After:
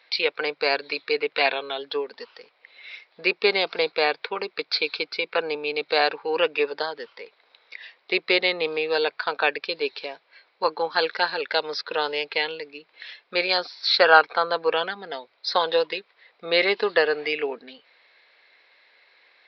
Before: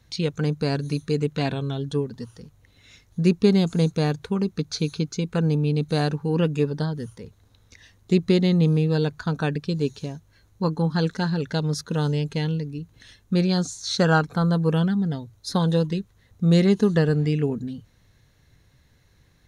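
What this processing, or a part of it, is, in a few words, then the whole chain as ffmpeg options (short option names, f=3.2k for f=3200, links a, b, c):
musical greeting card: -af "aresample=11025,aresample=44100,highpass=f=510:w=0.5412,highpass=f=510:w=1.3066,equalizer=f=2.3k:t=o:w=0.42:g=10,volume=7dB"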